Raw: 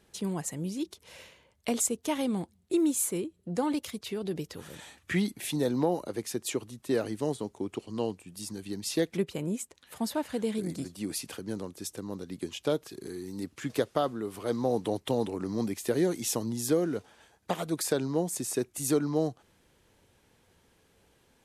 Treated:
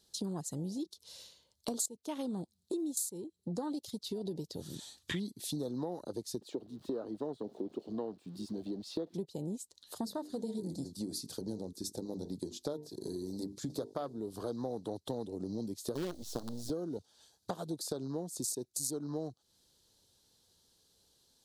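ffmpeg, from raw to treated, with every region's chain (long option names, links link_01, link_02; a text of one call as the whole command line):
ffmpeg -i in.wav -filter_complex "[0:a]asettb=1/sr,asplit=3[link_01][link_02][link_03];[link_01]atrim=end=6.414[link_04];[link_02]atrim=start=6.41:end=9.14,asetpts=PTS-STARTPTS,afade=type=in:duration=0.004:curve=qsin,afade=type=out:start_time=2.726:duration=0.004:curve=qsin,aeval=exprs='val(0)+0.5*0.00708*sgn(val(0))':channel_layout=same,acrossover=split=180 2900:gain=0.158 1 0.0891[link_05][link_06][link_07];[link_05][link_06][link_07]amix=inputs=3:normalize=0[link_08];[link_03]atrim=start=9.136[link_09];[link_04][link_08]acrossfade=duration=0.004:curve1=hsin:curve2=qsin[link_10];[link_10][link_09]acrossfade=duration=0.004:curve1=qsin:curve2=hsin,asettb=1/sr,asplit=3[link_11][link_12][link_13];[link_11]atrim=end=10.014[link_14];[link_12]atrim=start=10.01:end=14.18,asetpts=PTS-STARTPTS,afade=type=in:duration=0.004:curve=qsin,afade=type=out:start_time=4.166:duration=0.004:curve=qsin,equalizer=frequency=2900:width_type=o:width=0.39:gain=-7,bandreject=frequency=50:width_type=h:width=6,bandreject=frequency=100:width_type=h:width=6,bandreject=frequency=150:width_type=h:width=6,bandreject=frequency=200:width_type=h:width=6,bandreject=frequency=250:width_type=h:width=6,bandreject=frequency=300:width_type=h:width=6,bandreject=frequency=350:width_type=h:width=6,bandreject=frequency=400:width_type=h:width=6,bandreject=frequency=450:width_type=h:width=6[link_15];[link_13]atrim=start=14.176[link_16];[link_14][link_15]acrossfade=duration=0.004:curve1=hsin:curve2=qsin[link_17];[link_17][link_16]acrossfade=duration=0.004:curve1=qsin:curve2=hsin,asettb=1/sr,asplit=3[link_18][link_19][link_20];[link_18]atrim=end=15.954[link_21];[link_19]atrim=start=15.95:end=16.7,asetpts=PTS-STARTPTS,afade=type=in:duration=0.004:curve=qsin,afade=type=out:start_time=0.746:duration=0.004:curve=qsin,aeval=exprs='val(0)+0.5*0.0126*sgn(val(0))':channel_layout=same,lowpass=frequency=3500:poles=1,acrusher=bits=5:dc=4:mix=0:aa=0.000001[link_22];[link_20]atrim=start=16.696[link_23];[link_21][link_22]acrossfade=duration=0.004:curve1=hsin:curve2=qsin[link_24];[link_24][link_23]acrossfade=duration=0.004:curve1=qsin:curve2=hsin,afwtdn=0.0126,highshelf=frequency=3100:width_type=q:width=3:gain=10.5,acompressor=threshold=-42dB:ratio=5,volume=5.5dB" out.wav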